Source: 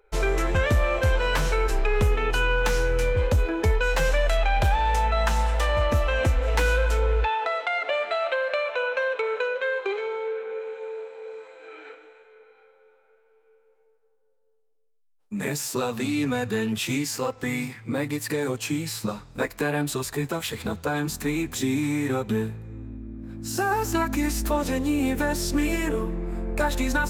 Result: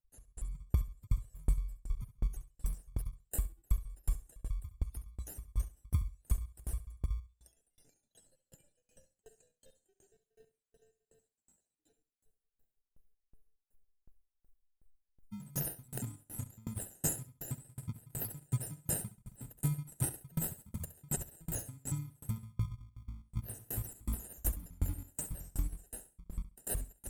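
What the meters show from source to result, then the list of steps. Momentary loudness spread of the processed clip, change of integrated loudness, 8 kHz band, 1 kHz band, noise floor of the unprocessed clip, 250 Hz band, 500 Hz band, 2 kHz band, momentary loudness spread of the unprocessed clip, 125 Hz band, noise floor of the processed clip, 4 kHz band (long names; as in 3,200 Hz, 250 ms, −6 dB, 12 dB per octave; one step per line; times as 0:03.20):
10 LU, −14.5 dB, −6.5 dB, −30.0 dB, −64 dBFS, −19.5 dB, −29.5 dB, −32.5 dB, 9 LU, −10.5 dB, below −85 dBFS, −26.0 dB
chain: time-frequency cells dropped at random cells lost 65%
Chebyshev band-stop filter 150–8,900 Hz, order 3
high-shelf EQ 4,900 Hz +8 dB
in parallel at −7 dB: decimation without filtering 39×
on the sum: downward compressor 6 to 1, threshold −36 dBFS, peak gain reduction 18.5 dB
on a send: flutter between parallel walls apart 11.6 metres, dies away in 0.49 s
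on the sum: automatic gain control gain up to 14.5 dB
tremolo with a ramp in dB decaying 2.7 Hz, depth 32 dB
level −4.5 dB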